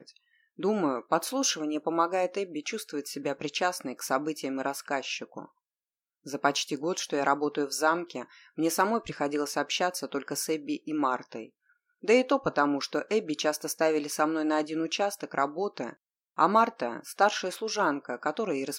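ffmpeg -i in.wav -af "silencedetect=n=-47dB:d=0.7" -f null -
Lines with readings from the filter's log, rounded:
silence_start: 5.46
silence_end: 6.26 | silence_duration: 0.80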